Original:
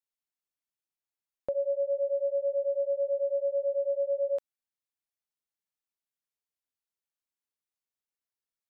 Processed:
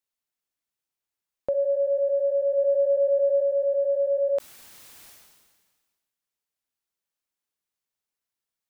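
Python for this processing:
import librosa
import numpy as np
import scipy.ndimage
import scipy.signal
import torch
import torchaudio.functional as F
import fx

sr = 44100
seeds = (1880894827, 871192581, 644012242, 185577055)

y = fx.low_shelf(x, sr, hz=320.0, db=8.5, at=(2.57, 3.4), fade=0.02)
y = fx.sustainer(y, sr, db_per_s=37.0)
y = y * 10.0 ** (4.5 / 20.0)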